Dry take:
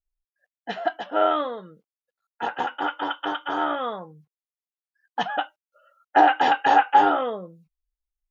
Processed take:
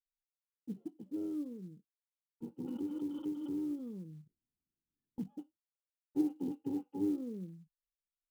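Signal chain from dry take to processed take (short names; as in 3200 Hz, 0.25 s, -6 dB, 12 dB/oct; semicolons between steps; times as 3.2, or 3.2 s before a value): gate with hold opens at -42 dBFS; inverse Chebyshev low-pass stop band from 620 Hz, stop band 40 dB; short-mantissa float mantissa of 4-bit; 2.64–5.34 backwards sustainer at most 30 dB/s; gain -1 dB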